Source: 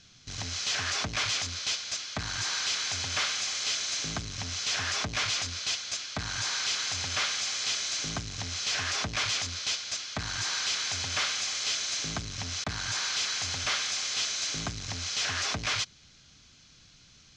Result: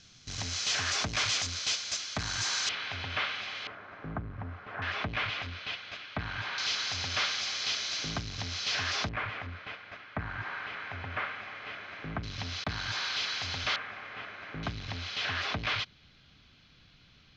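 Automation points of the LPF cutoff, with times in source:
LPF 24 dB/oct
8500 Hz
from 2.69 s 3200 Hz
from 3.67 s 1500 Hz
from 4.82 s 3000 Hz
from 6.58 s 5200 Hz
from 9.09 s 2100 Hz
from 12.23 s 4400 Hz
from 13.76 s 2000 Hz
from 14.63 s 3800 Hz

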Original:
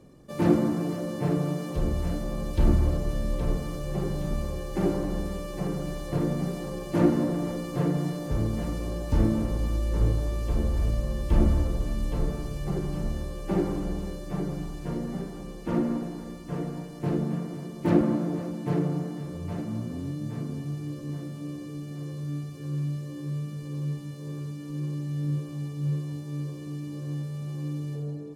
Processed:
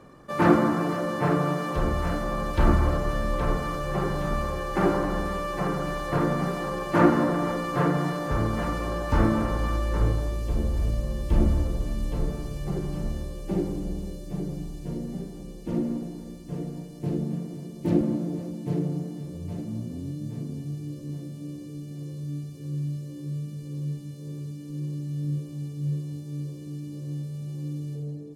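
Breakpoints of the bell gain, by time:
bell 1300 Hz 1.8 oct
9.73 s +14.5 dB
10.2 s +6 dB
10.43 s -1.5 dB
13.09 s -1.5 dB
13.72 s -11.5 dB

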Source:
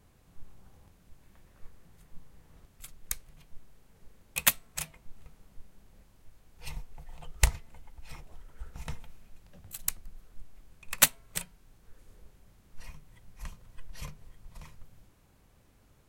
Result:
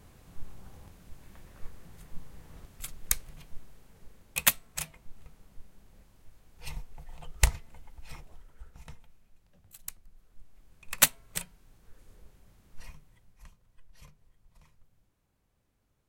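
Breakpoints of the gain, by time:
3.26 s +7 dB
4.49 s +0.5 dB
8.14 s +0.5 dB
8.93 s -9.5 dB
10.07 s -9.5 dB
10.99 s 0 dB
12.82 s 0 dB
13.54 s -12.5 dB

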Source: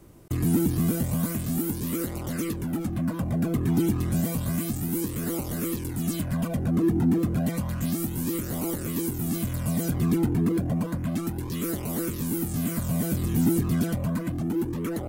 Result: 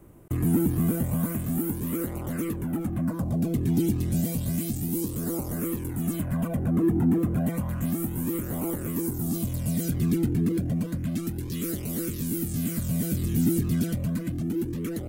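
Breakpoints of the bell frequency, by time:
bell -12.5 dB 1.2 oct
2.95 s 4800 Hz
3.54 s 1200 Hz
4.79 s 1200 Hz
5.72 s 4700 Hz
8.86 s 4700 Hz
9.8 s 920 Hz

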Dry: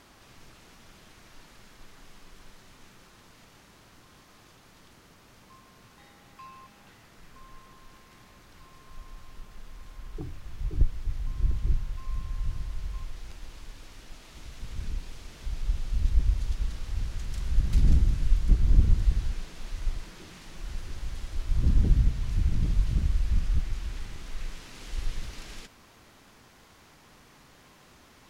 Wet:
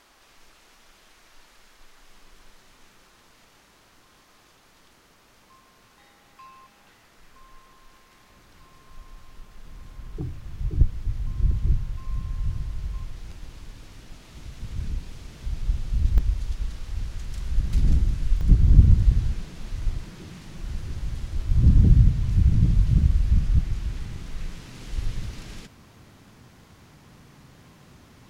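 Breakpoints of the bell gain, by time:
bell 120 Hz 2.4 oct
-13 dB
from 2.1 s -6.5 dB
from 8.3 s 0 dB
from 9.65 s +8.5 dB
from 16.18 s +1.5 dB
from 18.41 s +11.5 dB

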